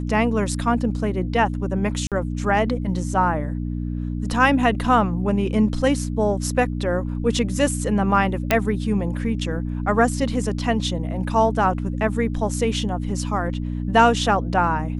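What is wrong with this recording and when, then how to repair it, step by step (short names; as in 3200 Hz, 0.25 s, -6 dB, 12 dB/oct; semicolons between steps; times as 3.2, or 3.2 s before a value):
hum 60 Hz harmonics 5 -26 dBFS
2.07–2.12 gap 47 ms
8.51 pop -3 dBFS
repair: de-click; de-hum 60 Hz, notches 5; interpolate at 2.07, 47 ms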